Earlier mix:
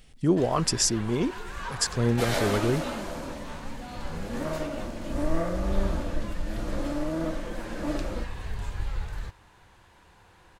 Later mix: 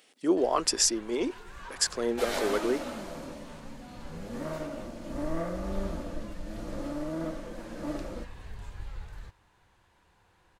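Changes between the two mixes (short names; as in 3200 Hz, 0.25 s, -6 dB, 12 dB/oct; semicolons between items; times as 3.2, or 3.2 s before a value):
speech: add HPF 300 Hz 24 dB/oct; first sound -9.0 dB; second sound -4.0 dB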